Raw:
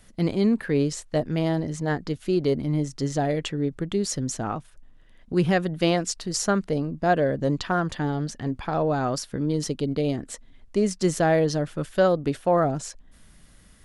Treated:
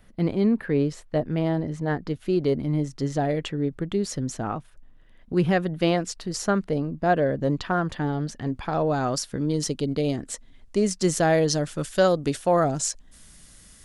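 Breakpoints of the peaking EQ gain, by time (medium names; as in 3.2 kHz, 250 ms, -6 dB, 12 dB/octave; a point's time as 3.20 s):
peaking EQ 7.4 kHz 1.8 oct
1.79 s -12 dB
2.33 s -5.5 dB
8.06 s -5.5 dB
8.97 s +4 dB
11.09 s +4 dB
11.64 s +11 dB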